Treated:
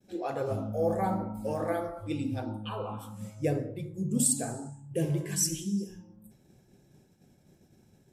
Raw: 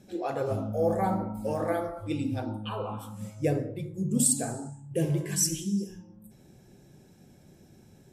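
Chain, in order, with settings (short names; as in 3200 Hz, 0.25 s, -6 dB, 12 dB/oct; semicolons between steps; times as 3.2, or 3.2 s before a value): expander -50 dBFS; gain -2 dB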